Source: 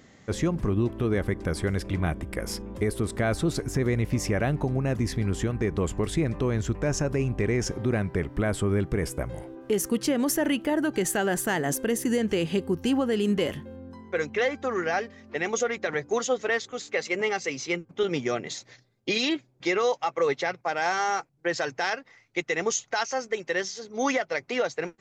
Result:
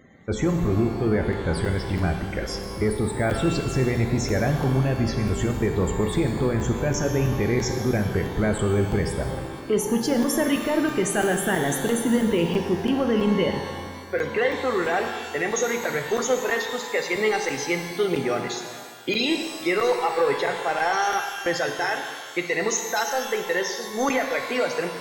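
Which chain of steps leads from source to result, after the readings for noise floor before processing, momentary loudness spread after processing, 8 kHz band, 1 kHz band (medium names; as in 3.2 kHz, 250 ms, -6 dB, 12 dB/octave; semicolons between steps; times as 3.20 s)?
-60 dBFS, 5 LU, +2.5 dB, +4.5 dB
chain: waveshaping leveller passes 1; loudest bins only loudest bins 64; crackling interface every 0.33 s, samples 512, zero, from 0.99 s; pitch-shifted reverb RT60 1.6 s, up +12 st, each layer -8 dB, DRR 4.5 dB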